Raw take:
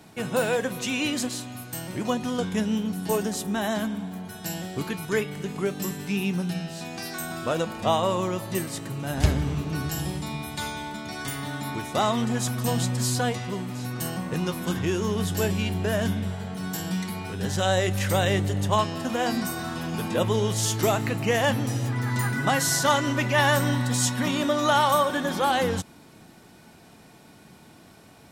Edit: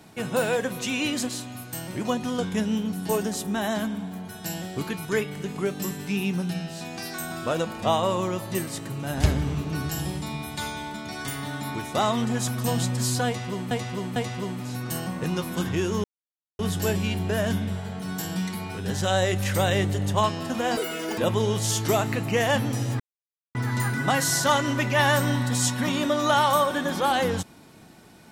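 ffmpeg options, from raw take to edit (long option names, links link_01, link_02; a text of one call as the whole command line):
ffmpeg -i in.wav -filter_complex "[0:a]asplit=7[link_01][link_02][link_03][link_04][link_05][link_06][link_07];[link_01]atrim=end=13.712[link_08];[link_02]atrim=start=13.258:end=13.712[link_09];[link_03]atrim=start=13.258:end=15.14,asetpts=PTS-STARTPTS,afade=type=out:start_time=1.878:duration=0.004:curve=hsin,apad=pad_dur=0.55[link_10];[link_04]atrim=start=15.14:end=19.324,asetpts=PTS-STARTPTS,afade=type=in:duration=0.004:curve=hsin[link_11];[link_05]atrim=start=19.32:end=20.12,asetpts=PTS-STARTPTS,asetrate=86436,aresample=44100[link_12];[link_06]atrim=start=20.116:end=21.94,asetpts=PTS-STARTPTS,afade=type=out:start_time=1.82:duration=0.004:curve=hsin,apad=pad_dur=0.55[link_13];[link_07]atrim=start=21.94,asetpts=PTS-STARTPTS,afade=type=in:duration=0.004:curve=hsin[link_14];[link_08][link_09]acrossfade=duration=0.004:curve1=hsin:curve2=hsin[link_15];[link_10][link_11]concat=n=2:v=0:a=1[link_16];[link_15][link_16]acrossfade=duration=0.004:curve1=hsin:curve2=hsin[link_17];[link_17][link_12]acrossfade=duration=0.004:curve1=hsin:curve2=hsin[link_18];[link_13][link_14]concat=n=2:v=0:a=1[link_19];[link_18][link_19]acrossfade=duration=0.004:curve1=hsin:curve2=hsin" out.wav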